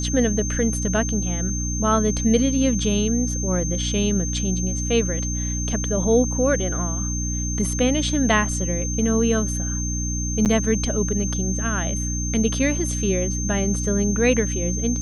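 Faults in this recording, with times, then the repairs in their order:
mains hum 60 Hz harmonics 5 −26 dBFS
whistle 6,300 Hz −28 dBFS
0:10.45–0:10.46: drop-out 8.8 ms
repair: notch filter 6,300 Hz, Q 30
hum removal 60 Hz, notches 5
repair the gap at 0:10.45, 8.8 ms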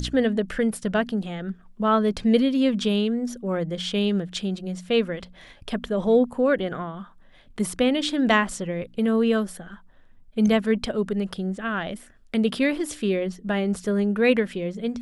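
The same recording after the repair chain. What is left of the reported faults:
none of them is left

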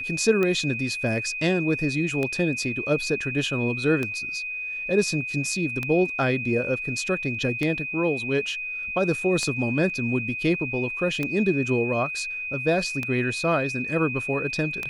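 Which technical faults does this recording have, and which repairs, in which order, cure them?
scratch tick 33 1/3 rpm −13 dBFS
whistle 2,500 Hz −29 dBFS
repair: click removal
notch filter 2,500 Hz, Q 30

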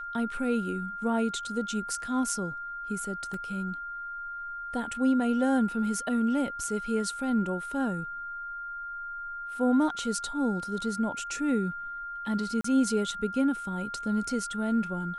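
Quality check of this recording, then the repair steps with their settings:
whistle 1,400 Hz −35 dBFS
0:03.34: drop-out 2.3 ms
0:12.61–0:12.64: drop-out 34 ms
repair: notch filter 1,400 Hz, Q 30
repair the gap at 0:03.34, 2.3 ms
repair the gap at 0:12.61, 34 ms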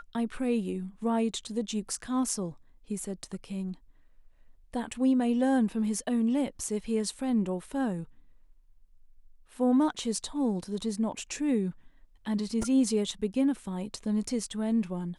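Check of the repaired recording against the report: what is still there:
none of them is left

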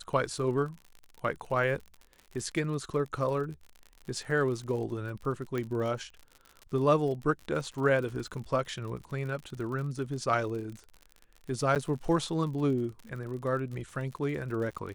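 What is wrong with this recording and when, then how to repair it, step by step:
surface crackle 54 per second −38 dBFS
0:05.58: click −21 dBFS
0:11.75–0:11.76: drop-out 8.6 ms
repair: click removal
repair the gap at 0:11.75, 8.6 ms

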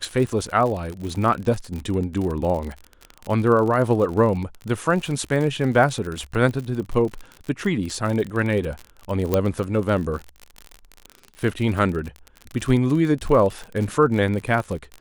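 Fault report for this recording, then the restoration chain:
surface crackle 52 per second −27 dBFS
0:09.34: click −6 dBFS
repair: click removal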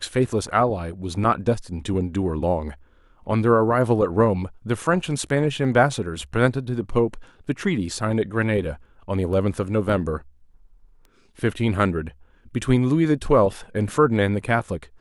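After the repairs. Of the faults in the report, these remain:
0:09.34: click

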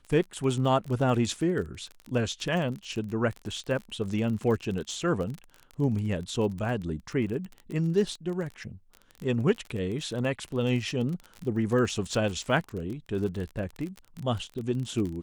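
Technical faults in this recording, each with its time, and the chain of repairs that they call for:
surface crackle 30 per second −33 dBFS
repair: click removal

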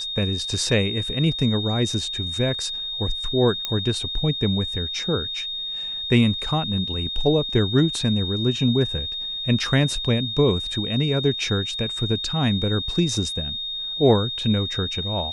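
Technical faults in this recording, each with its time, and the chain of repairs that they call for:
whistle 3,700 Hz −27 dBFS
0:03.65: click −10 dBFS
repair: click removal
notch filter 3,700 Hz, Q 30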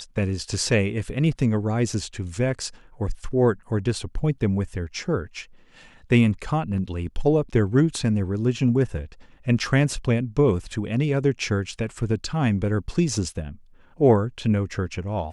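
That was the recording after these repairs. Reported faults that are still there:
0:03.65: click

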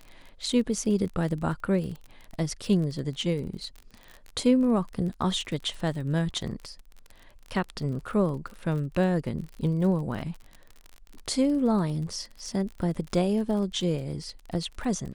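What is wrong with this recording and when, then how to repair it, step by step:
surface crackle 36 per second −35 dBFS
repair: click removal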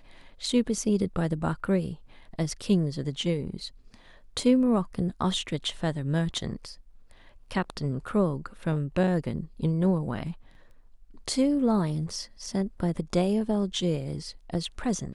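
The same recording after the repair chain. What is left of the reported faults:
none of them is left

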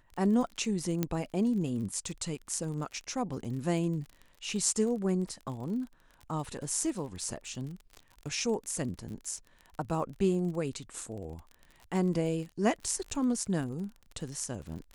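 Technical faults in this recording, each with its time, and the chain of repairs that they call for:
surface crackle 39 per second −39 dBFS
0:01.03: click −15 dBFS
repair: click removal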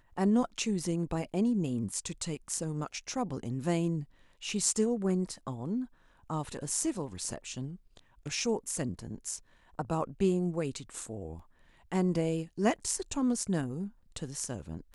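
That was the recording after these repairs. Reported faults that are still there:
none of them is left

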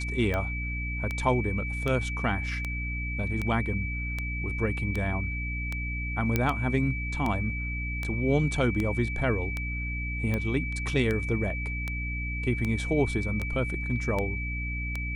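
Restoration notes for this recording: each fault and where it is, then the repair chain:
mains hum 60 Hz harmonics 5 −33 dBFS
scratch tick 78 rpm −17 dBFS
whistle 2,300 Hz −34 dBFS
0:06.36: click −11 dBFS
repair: click removal
notch filter 2,300 Hz, Q 30
hum removal 60 Hz, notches 5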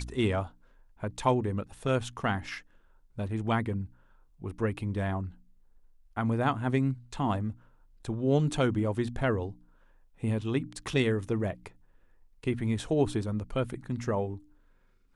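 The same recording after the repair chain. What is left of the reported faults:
none of them is left

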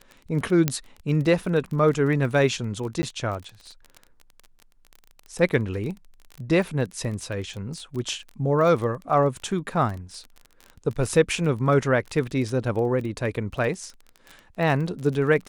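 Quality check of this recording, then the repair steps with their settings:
surface crackle 25 per second −31 dBFS
0:00.68: click −6 dBFS
0:03.02–0:03.03: drop-out 10 ms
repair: click removal
repair the gap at 0:03.02, 10 ms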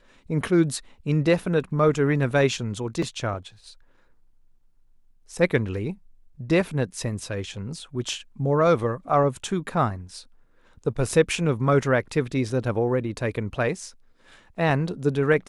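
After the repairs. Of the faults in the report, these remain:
none of them is left

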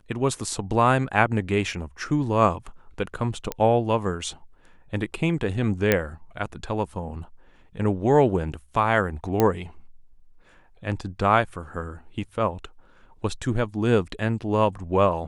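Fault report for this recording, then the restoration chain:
0:03.52: click −12 dBFS
0:05.92: click −5 dBFS
0:09.40: click −7 dBFS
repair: click removal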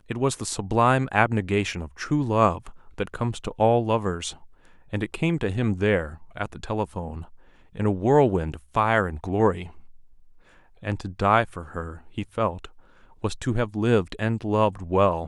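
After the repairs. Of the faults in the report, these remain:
none of them is left

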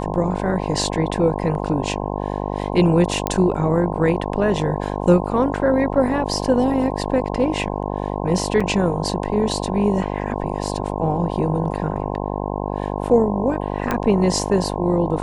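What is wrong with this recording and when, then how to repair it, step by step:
mains buzz 50 Hz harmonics 21 −25 dBFS
0:03.27: click −6 dBFS
0:08.60–0:08.61: drop-out 5.1 ms
0:13.91: click −8 dBFS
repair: click removal
hum removal 50 Hz, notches 21
repair the gap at 0:08.60, 5.1 ms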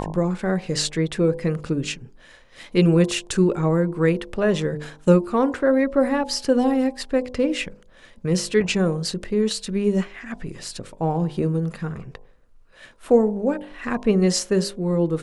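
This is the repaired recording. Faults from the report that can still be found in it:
0:13.91: click

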